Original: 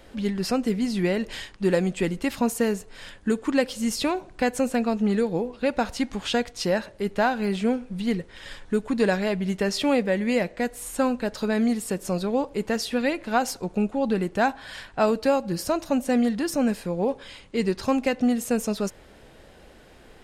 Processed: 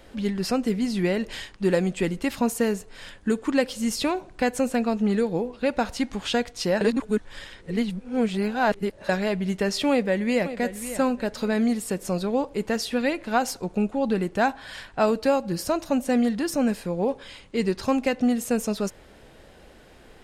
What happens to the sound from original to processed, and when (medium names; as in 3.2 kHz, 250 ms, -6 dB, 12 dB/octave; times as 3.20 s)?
6.81–9.09 s: reverse
9.90–10.50 s: echo throw 550 ms, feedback 25%, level -12 dB